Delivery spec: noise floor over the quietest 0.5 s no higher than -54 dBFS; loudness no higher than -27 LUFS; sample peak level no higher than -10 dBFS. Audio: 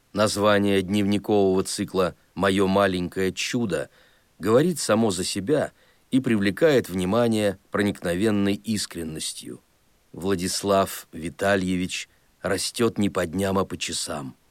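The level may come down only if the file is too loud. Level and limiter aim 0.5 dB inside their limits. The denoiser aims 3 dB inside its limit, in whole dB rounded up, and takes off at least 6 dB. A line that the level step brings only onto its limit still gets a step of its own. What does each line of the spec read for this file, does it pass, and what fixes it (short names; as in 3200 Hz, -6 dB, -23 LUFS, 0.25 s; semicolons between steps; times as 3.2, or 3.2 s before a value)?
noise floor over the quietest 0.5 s -62 dBFS: OK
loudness -24.0 LUFS: fail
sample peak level -7.5 dBFS: fail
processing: gain -3.5 dB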